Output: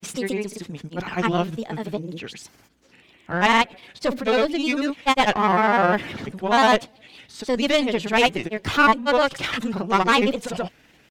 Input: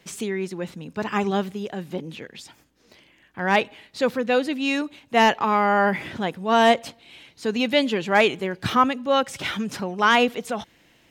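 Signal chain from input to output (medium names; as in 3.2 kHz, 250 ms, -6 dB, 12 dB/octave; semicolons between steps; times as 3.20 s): single-diode clipper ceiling -23 dBFS; granulator, pitch spread up and down by 3 st; trim +4 dB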